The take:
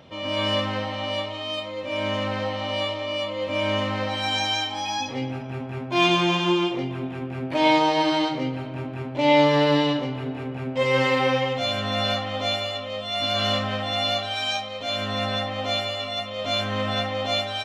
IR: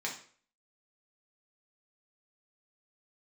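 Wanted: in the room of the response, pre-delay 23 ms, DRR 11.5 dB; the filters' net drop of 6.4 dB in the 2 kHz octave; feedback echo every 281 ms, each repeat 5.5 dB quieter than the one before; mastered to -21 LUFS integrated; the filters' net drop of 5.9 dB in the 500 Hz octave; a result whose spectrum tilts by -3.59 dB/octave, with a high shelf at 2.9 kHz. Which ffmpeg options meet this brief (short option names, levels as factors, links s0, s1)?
-filter_complex "[0:a]equalizer=f=500:t=o:g=-7,equalizer=f=2000:t=o:g=-6,highshelf=f=2900:g=-3.5,aecho=1:1:281|562|843|1124|1405|1686|1967:0.531|0.281|0.149|0.079|0.0419|0.0222|0.0118,asplit=2[s0][s1];[1:a]atrim=start_sample=2205,adelay=23[s2];[s1][s2]afir=irnorm=-1:irlink=0,volume=0.168[s3];[s0][s3]amix=inputs=2:normalize=0,volume=1.88"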